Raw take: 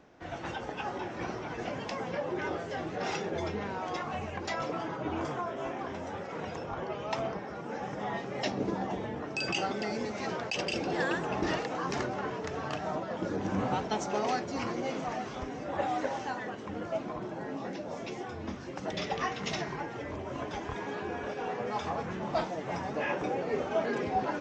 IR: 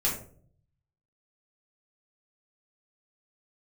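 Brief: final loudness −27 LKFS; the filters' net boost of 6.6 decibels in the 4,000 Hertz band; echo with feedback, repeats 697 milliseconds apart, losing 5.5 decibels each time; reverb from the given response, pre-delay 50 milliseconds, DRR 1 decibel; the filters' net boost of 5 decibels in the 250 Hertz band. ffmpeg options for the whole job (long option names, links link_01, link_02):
-filter_complex "[0:a]equalizer=frequency=250:width_type=o:gain=6.5,equalizer=frequency=4000:width_type=o:gain=9,aecho=1:1:697|1394|2091|2788|3485|4182|4879:0.531|0.281|0.149|0.079|0.0419|0.0222|0.0118,asplit=2[link_01][link_02];[1:a]atrim=start_sample=2205,adelay=50[link_03];[link_02][link_03]afir=irnorm=-1:irlink=0,volume=-9.5dB[link_04];[link_01][link_04]amix=inputs=2:normalize=0,volume=0.5dB"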